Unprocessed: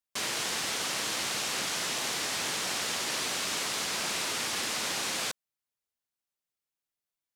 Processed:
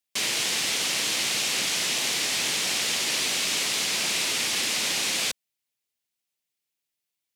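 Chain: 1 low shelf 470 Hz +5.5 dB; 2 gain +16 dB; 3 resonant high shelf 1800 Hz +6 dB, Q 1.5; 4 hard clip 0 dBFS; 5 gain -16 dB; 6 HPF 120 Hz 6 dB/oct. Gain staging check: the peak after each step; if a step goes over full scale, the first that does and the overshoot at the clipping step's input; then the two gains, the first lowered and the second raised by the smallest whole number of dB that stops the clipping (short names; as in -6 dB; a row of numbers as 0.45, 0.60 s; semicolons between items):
-17.5, -1.5, +4.0, 0.0, -16.0, -15.5 dBFS; step 3, 4.0 dB; step 2 +12 dB, step 5 -12 dB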